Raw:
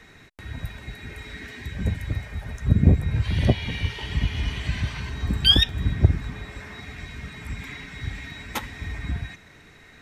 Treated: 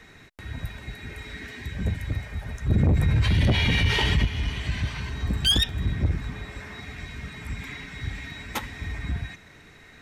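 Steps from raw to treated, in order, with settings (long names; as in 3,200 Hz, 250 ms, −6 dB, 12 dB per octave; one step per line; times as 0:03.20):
soft clipping −16 dBFS, distortion −9 dB
0:02.70–0:04.25: envelope flattener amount 70%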